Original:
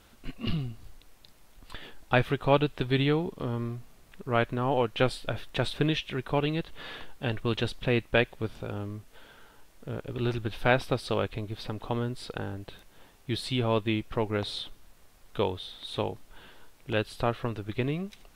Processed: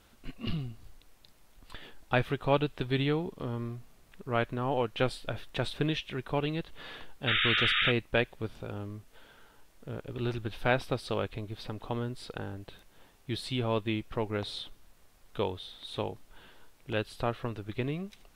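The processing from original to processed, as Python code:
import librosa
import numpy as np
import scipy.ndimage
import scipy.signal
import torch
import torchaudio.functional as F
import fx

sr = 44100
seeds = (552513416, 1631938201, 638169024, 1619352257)

y = fx.spec_paint(x, sr, seeds[0], shape='noise', start_s=7.27, length_s=0.65, low_hz=1200.0, high_hz=3800.0, level_db=-24.0)
y = y * librosa.db_to_amplitude(-3.5)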